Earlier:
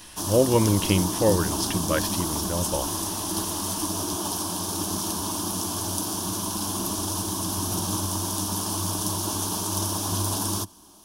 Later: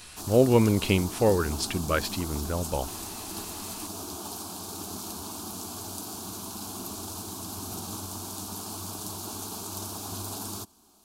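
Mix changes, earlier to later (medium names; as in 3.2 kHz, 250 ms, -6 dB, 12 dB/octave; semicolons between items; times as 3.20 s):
background -8.5 dB; master: remove rippled EQ curve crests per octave 1.2, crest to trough 7 dB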